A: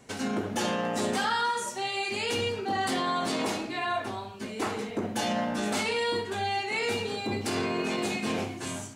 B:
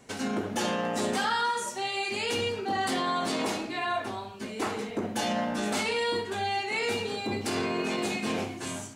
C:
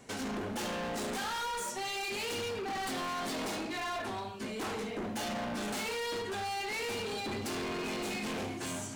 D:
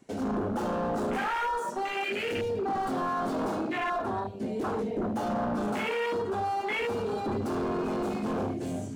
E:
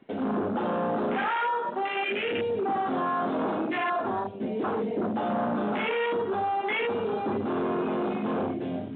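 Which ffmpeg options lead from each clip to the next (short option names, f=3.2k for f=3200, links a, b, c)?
-af "equalizer=f=110:w=1.5:g=-2.5"
-af "areverse,acompressor=mode=upward:threshold=-38dB:ratio=2.5,areverse,asoftclip=type=hard:threshold=-34.5dB"
-af "afwtdn=0.0141,volume=7.5dB"
-af "highpass=150,volume=2.5dB" -ar 8000 -c:a pcm_mulaw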